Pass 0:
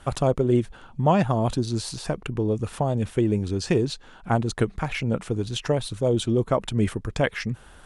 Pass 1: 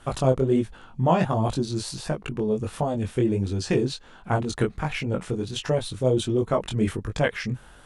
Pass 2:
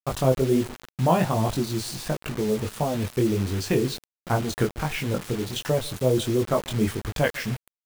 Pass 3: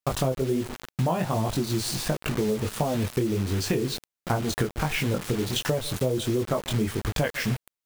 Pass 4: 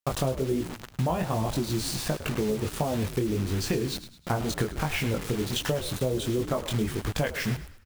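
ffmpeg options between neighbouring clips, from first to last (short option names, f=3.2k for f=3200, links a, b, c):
-af "flanger=delay=19:depth=4.5:speed=1.4,volume=2.5dB"
-filter_complex "[0:a]asplit=2[a][b];[b]adelay=145,lowpass=f=1.6k:p=1,volume=-22dB,asplit=2[c][d];[d]adelay=145,lowpass=f=1.6k:p=1,volume=0.47,asplit=2[e][f];[f]adelay=145,lowpass=f=1.6k:p=1,volume=0.47[g];[a][c][e][g]amix=inputs=4:normalize=0,acrusher=bits=5:mix=0:aa=0.000001"
-af "acompressor=threshold=-26dB:ratio=10,volume=4.5dB"
-filter_complex "[0:a]asplit=5[a][b][c][d][e];[b]adelay=105,afreqshift=-69,volume=-13dB[f];[c]adelay=210,afreqshift=-138,volume=-21.2dB[g];[d]adelay=315,afreqshift=-207,volume=-29.4dB[h];[e]adelay=420,afreqshift=-276,volume=-37.5dB[i];[a][f][g][h][i]amix=inputs=5:normalize=0,volume=-2dB"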